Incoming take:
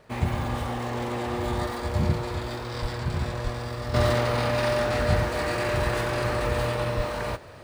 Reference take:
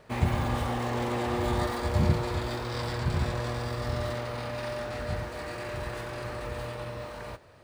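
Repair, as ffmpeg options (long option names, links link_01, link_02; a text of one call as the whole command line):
ffmpeg -i in.wav -filter_complex "[0:a]adeclick=threshold=4,asplit=3[link_01][link_02][link_03];[link_01]afade=type=out:start_time=2.81:duration=0.02[link_04];[link_02]highpass=frequency=140:width=0.5412,highpass=frequency=140:width=1.3066,afade=type=in:start_time=2.81:duration=0.02,afade=type=out:start_time=2.93:duration=0.02[link_05];[link_03]afade=type=in:start_time=2.93:duration=0.02[link_06];[link_04][link_05][link_06]amix=inputs=3:normalize=0,asplit=3[link_07][link_08][link_09];[link_07]afade=type=out:start_time=3.43:duration=0.02[link_10];[link_08]highpass=frequency=140:width=0.5412,highpass=frequency=140:width=1.3066,afade=type=in:start_time=3.43:duration=0.02,afade=type=out:start_time=3.55:duration=0.02[link_11];[link_09]afade=type=in:start_time=3.55:duration=0.02[link_12];[link_10][link_11][link_12]amix=inputs=3:normalize=0,asplit=3[link_13][link_14][link_15];[link_13]afade=type=out:start_time=6.96:duration=0.02[link_16];[link_14]highpass=frequency=140:width=0.5412,highpass=frequency=140:width=1.3066,afade=type=in:start_time=6.96:duration=0.02,afade=type=out:start_time=7.08:duration=0.02[link_17];[link_15]afade=type=in:start_time=7.08:duration=0.02[link_18];[link_16][link_17][link_18]amix=inputs=3:normalize=0,asetnsamples=nb_out_samples=441:pad=0,asendcmd='3.94 volume volume -10dB',volume=0dB" out.wav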